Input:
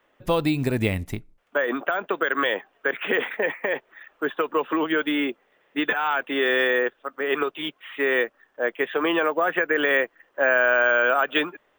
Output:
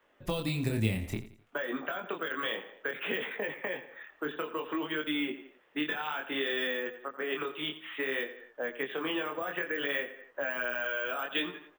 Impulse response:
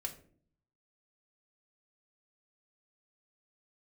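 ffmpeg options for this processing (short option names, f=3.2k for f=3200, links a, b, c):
-filter_complex "[0:a]aecho=1:1:86|172|258:0.178|0.0658|0.0243,flanger=delay=19.5:depth=7.4:speed=0.59,acrossover=split=210|3000[a][b][c];[b]acompressor=threshold=-34dB:ratio=6[d];[a][d][c]amix=inputs=3:normalize=0"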